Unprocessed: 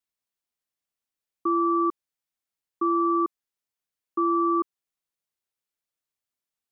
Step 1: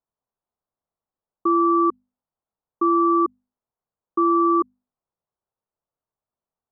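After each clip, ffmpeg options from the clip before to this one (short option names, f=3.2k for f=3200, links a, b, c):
-af "lowpass=f=1.1k:w=0.5412,lowpass=f=1.1k:w=1.3066,equalizer=f=300:t=o:w=0.77:g=-5,bandreject=f=50:t=h:w=6,bandreject=f=100:t=h:w=6,bandreject=f=150:t=h:w=6,bandreject=f=200:t=h:w=6,bandreject=f=250:t=h:w=6,volume=9dB"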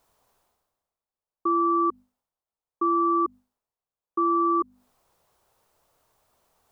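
-af "equalizer=f=190:t=o:w=1.6:g=-6,areverse,acompressor=mode=upward:threshold=-44dB:ratio=2.5,areverse,volume=-3dB"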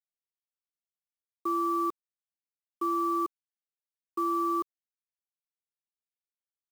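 -af "acrusher=bits=6:mix=0:aa=0.000001,volume=-6dB"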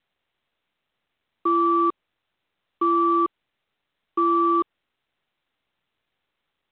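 -af "volume=8.5dB" -ar 8000 -c:a pcm_mulaw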